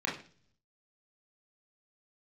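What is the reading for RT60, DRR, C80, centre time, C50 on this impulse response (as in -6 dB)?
0.45 s, -4.5 dB, 13.0 dB, 31 ms, 8.0 dB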